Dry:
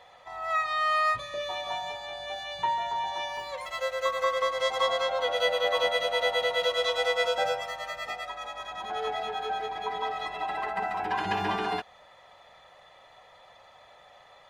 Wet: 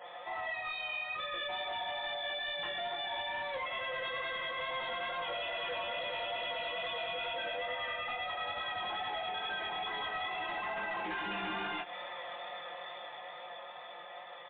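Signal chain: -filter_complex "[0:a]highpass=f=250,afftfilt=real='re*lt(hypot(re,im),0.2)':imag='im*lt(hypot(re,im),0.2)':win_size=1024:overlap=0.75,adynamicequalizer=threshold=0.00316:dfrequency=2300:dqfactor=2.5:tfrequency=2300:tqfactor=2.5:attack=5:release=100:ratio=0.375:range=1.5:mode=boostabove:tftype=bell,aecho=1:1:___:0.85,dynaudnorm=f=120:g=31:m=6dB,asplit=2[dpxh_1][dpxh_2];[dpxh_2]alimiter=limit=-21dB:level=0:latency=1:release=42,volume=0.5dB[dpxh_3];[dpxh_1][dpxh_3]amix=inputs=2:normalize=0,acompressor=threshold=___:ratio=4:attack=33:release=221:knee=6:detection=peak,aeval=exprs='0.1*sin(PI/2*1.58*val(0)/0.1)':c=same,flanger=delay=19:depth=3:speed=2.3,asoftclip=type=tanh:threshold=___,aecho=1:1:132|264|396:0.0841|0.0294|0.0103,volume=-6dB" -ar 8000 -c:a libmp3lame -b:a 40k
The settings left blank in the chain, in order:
5.7, -33dB, -25.5dB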